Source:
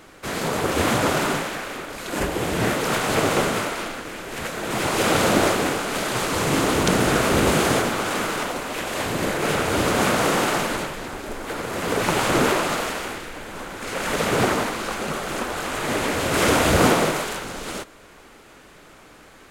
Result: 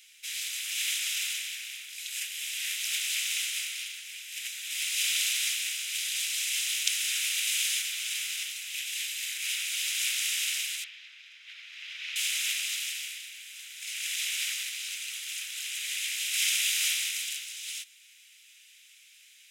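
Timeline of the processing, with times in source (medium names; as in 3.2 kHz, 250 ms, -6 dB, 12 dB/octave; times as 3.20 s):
10.84–12.16 s: distance through air 250 m
whole clip: steep high-pass 2.4 kHz 36 dB/octave; band-stop 4.4 kHz, Q 9.5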